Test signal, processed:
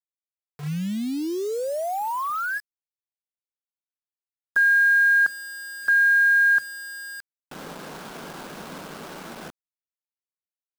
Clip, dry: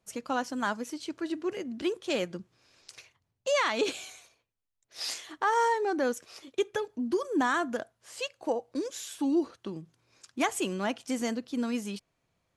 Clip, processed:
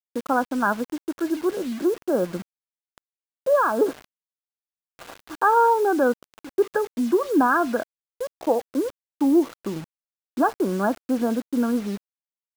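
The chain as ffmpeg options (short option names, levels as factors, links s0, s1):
-af "afftfilt=real='re*between(b*sr/4096,140,1700)':imag='im*between(b*sr/4096,140,1700)':win_size=4096:overlap=0.75,acrusher=bits=7:mix=0:aa=0.000001,volume=2.66"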